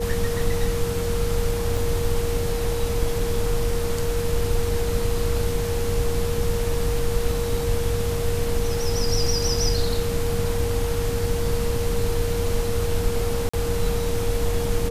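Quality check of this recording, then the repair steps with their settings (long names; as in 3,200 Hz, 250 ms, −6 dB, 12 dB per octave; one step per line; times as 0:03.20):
whistle 470 Hz −26 dBFS
0:01.77: drop-out 3.7 ms
0:13.49–0:13.54: drop-out 45 ms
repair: notch filter 470 Hz, Q 30
repair the gap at 0:01.77, 3.7 ms
repair the gap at 0:13.49, 45 ms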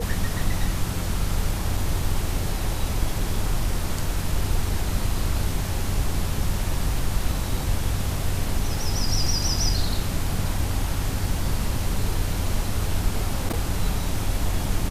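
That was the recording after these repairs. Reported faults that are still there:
none of them is left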